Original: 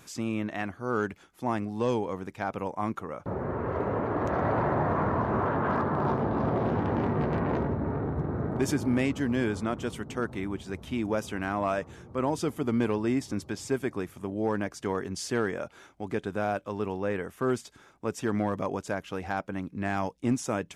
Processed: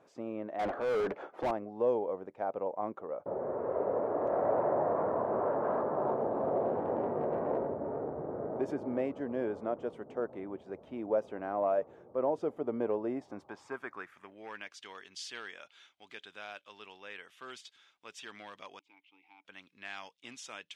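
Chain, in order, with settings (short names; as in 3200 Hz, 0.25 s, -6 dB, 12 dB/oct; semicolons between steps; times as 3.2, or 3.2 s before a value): band-pass sweep 570 Hz -> 3300 Hz, 13.1–14.77; 0.59–1.51 overdrive pedal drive 32 dB, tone 1200 Hz, clips at -26.5 dBFS; 18.79–19.45 vowel filter u; gain +2.5 dB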